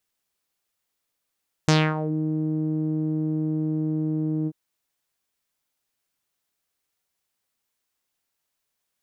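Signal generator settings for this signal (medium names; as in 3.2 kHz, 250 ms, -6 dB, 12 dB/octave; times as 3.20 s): synth note saw D#3 12 dB/octave, low-pass 320 Hz, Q 2.8, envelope 4.5 oct, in 0.43 s, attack 1.4 ms, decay 0.26 s, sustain -12.5 dB, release 0.05 s, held 2.79 s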